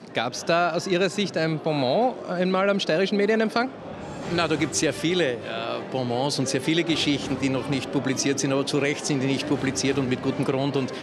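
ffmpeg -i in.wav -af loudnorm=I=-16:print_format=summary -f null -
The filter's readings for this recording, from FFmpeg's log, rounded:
Input Integrated:    -24.3 LUFS
Input True Peak:      -6.6 dBTP
Input LRA:             1.2 LU
Input Threshold:     -34.4 LUFS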